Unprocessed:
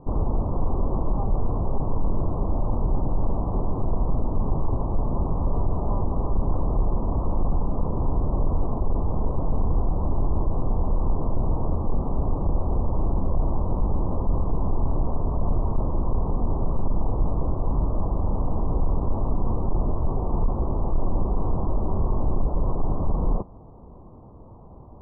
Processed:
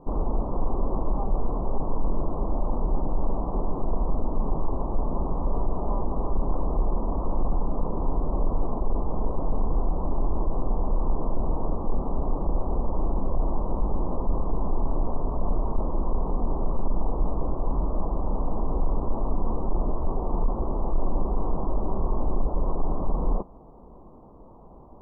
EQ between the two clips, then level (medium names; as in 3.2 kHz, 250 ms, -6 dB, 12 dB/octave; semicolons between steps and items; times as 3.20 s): peaking EQ 98 Hz -13.5 dB 1 oct; 0.0 dB